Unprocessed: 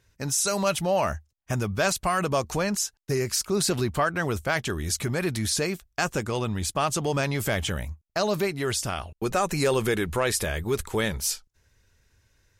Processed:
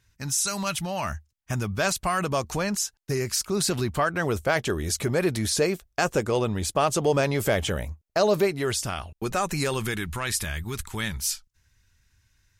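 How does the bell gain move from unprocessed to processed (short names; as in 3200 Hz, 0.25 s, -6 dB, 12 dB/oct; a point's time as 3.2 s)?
bell 490 Hz 1.2 oct
1.13 s -11.5 dB
1.77 s -2 dB
3.84 s -2 dB
4.56 s +6.5 dB
8.4 s +6.5 dB
8.95 s -3.5 dB
9.53 s -3.5 dB
10.09 s -15 dB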